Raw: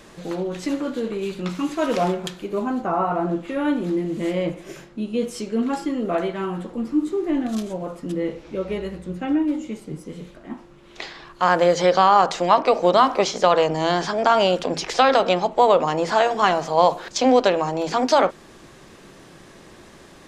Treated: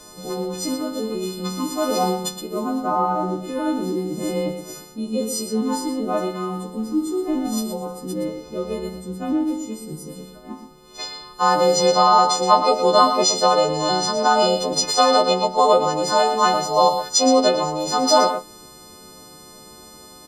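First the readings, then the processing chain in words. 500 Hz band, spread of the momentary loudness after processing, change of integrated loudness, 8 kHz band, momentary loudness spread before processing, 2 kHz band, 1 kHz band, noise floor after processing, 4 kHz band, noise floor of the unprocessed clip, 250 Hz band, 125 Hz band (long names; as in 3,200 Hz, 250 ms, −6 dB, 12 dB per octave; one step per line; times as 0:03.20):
0.0 dB, 15 LU, +1.5 dB, +11.5 dB, 15 LU, −3.0 dB, +1.5 dB, −44 dBFS, +6.0 dB, −47 dBFS, 0.0 dB, −1.0 dB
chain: every partial snapped to a pitch grid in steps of 3 semitones
flat-topped bell 2,200 Hz −11.5 dB 1.2 octaves
single-tap delay 118 ms −8.5 dB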